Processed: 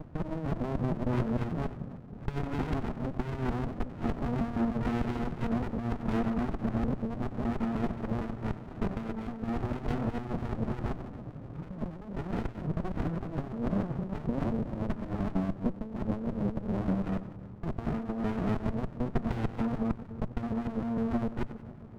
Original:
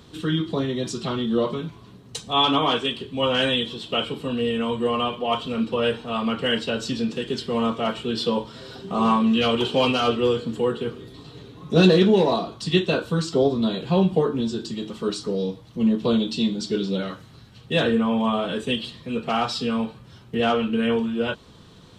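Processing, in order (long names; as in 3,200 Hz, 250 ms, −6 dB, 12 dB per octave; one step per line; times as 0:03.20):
reversed piece by piece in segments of 152 ms
Butterworth low-pass 1,300 Hz 48 dB per octave
in parallel at +1.5 dB: brickwall limiter −16.5 dBFS, peak gain reduction 10.5 dB
on the sum: compressor whose output falls as the input rises −19 dBFS, ratio −0.5
on a send: echo with a time of its own for lows and highs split 370 Hz, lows 287 ms, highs 92 ms, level −14.5 dB
on the sum: windowed peak hold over 65 samples
level −8.5 dB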